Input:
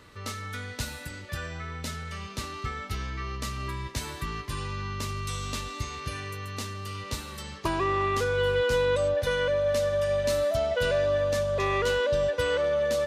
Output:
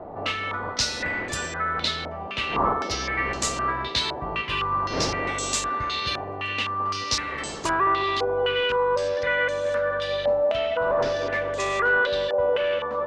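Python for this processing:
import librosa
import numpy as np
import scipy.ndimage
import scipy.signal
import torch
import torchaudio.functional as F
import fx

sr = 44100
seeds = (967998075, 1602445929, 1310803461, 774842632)

p1 = fx.dmg_wind(x, sr, seeds[0], corner_hz=480.0, level_db=-39.0)
p2 = fx.low_shelf(p1, sr, hz=350.0, db=-10.5)
p3 = p2 + fx.echo_wet_bandpass(p2, sr, ms=215, feedback_pct=58, hz=470.0, wet_db=-4.5, dry=0)
p4 = np.clip(p3, -10.0 ** (-23.0 / 20.0), 10.0 ** (-23.0 / 20.0))
p5 = fx.rider(p4, sr, range_db=5, speed_s=0.5)
p6 = p4 + (p5 * 10.0 ** (3.0 / 20.0))
p7 = fx.filter_held_lowpass(p6, sr, hz=3.9, low_hz=770.0, high_hz=7500.0)
y = p7 * 10.0 ** (-4.0 / 20.0)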